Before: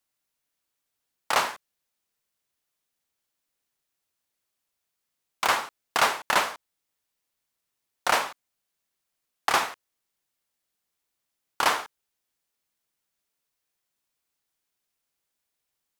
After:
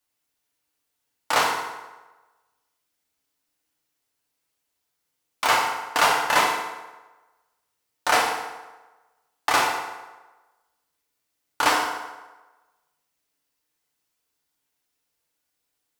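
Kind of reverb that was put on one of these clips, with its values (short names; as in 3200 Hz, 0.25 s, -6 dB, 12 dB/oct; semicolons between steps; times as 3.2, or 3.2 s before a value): FDN reverb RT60 1.2 s, low-frequency decay 0.8×, high-frequency decay 0.7×, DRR -2 dB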